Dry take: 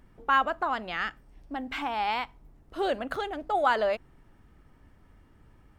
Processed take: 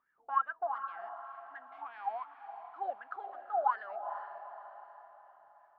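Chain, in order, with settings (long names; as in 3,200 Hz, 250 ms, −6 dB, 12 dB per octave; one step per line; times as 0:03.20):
LFO wah 2.7 Hz 680–1,700 Hz, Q 15
feedback delay with all-pass diffusion 453 ms, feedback 46%, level −9 dB
level +2 dB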